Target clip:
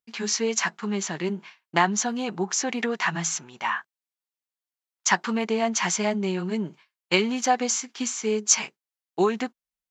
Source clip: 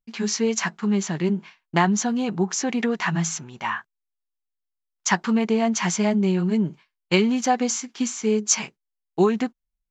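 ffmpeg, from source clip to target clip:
-af "highpass=f=480:p=1,volume=1dB"

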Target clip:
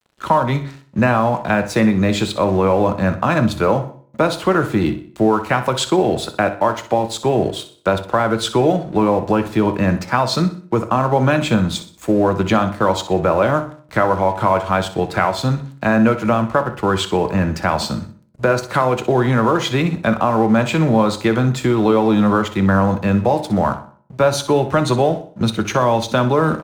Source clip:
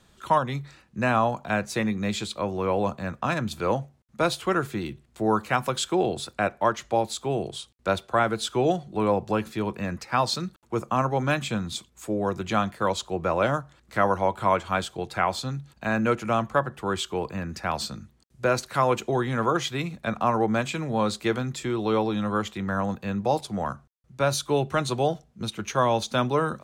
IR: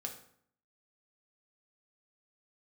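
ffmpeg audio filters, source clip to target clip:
-filter_complex "[0:a]highpass=45,highshelf=f=2.8k:g=-9.5,acompressor=threshold=-25dB:ratio=6,asplit=2[a][b];[b]alimiter=limit=-24dB:level=0:latency=1,volume=-1.5dB[c];[a][c]amix=inputs=2:normalize=0,aeval=exprs='sgn(val(0))*max(abs(val(0))-0.00355,0)':c=same,aecho=1:1:62|124|186|248:0.224|0.0851|0.0323|0.0123,asplit=2[d][e];[1:a]atrim=start_sample=2205,asetrate=52920,aresample=44100[f];[e][f]afir=irnorm=-1:irlink=0,volume=-1dB[g];[d][g]amix=inputs=2:normalize=0,volume=6.5dB"

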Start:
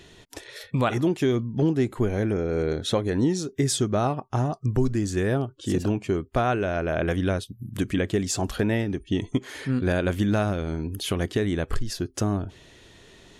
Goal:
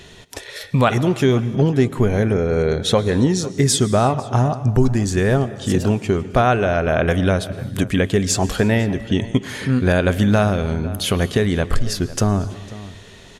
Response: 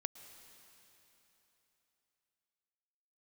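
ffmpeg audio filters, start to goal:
-filter_complex "[0:a]equalizer=f=320:t=o:w=0.22:g=-10.5,asplit=2[a][b];[b]adelay=501.5,volume=-17dB,highshelf=f=4k:g=-11.3[c];[a][c]amix=inputs=2:normalize=0,asplit=2[d][e];[1:a]atrim=start_sample=2205,afade=t=out:st=0.4:d=0.01,atrim=end_sample=18081[f];[e][f]afir=irnorm=-1:irlink=0,volume=6dB[g];[d][g]amix=inputs=2:normalize=0"

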